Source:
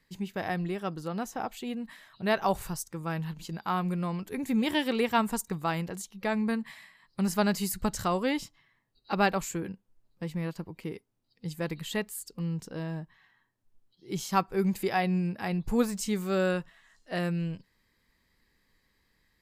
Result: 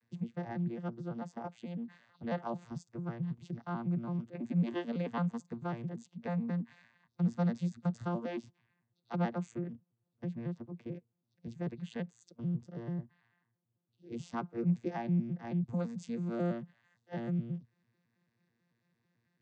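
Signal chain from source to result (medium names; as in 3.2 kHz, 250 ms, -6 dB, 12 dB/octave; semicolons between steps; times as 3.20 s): vocoder on a broken chord bare fifth, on A#2, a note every 110 ms; in parallel at +2 dB: compression, threshold -40 dBFS, peak gain reduction 19 dB; on the sum: trim -7 dB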